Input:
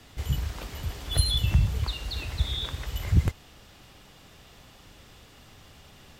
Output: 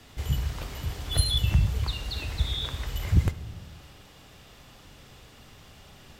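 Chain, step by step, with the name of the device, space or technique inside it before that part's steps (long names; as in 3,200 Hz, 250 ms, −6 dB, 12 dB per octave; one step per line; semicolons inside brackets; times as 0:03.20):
compressed reverb return (on a send at −7 dB: convolution reverb RT60 1.0 s, pre-delay 31 ms + downward compressor, threshold −27 dBFS, peak gain reduction 12 dB)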